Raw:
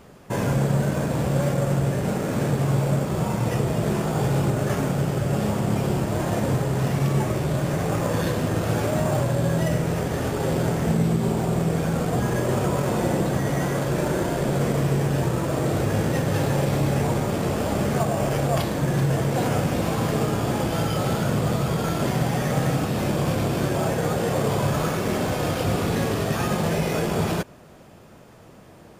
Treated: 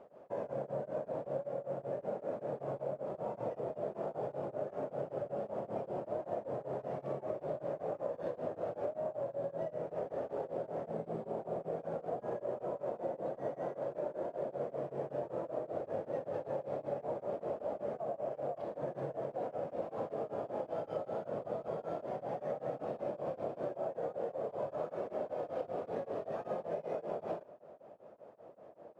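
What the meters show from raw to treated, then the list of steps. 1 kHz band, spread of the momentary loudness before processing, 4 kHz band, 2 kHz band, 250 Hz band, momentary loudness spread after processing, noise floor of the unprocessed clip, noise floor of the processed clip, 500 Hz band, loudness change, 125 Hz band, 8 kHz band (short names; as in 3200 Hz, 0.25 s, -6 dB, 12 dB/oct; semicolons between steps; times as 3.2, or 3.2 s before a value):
-14.5 dB, 2 LU, under -30 dB, -25.5 dB, -23.0 dB, 1 LU, -47 dBFS, -57 dBFS, -10.5 dB, -16.0 dB, -29.0 dB, under -35 dB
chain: band-pass 590 Hz, Q 3.2; compressor, threshold -36 dBFS, peak gain reduction 13 dB; beating tremolo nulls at 5.2 Hz; gain +3 dB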